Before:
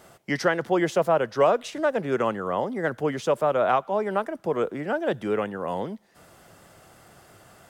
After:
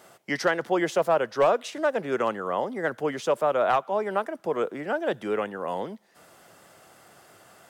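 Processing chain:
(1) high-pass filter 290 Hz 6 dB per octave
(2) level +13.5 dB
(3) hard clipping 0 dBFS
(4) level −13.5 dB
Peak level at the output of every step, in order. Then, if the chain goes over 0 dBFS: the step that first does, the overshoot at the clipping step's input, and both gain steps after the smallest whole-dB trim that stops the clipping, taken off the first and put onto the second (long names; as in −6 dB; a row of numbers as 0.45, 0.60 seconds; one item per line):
−9.5, +4.0, 0.0, −13.5 dBFS
step 2, 4.0 dB
step 2 +9.5 dB, step 4 −9.5 dB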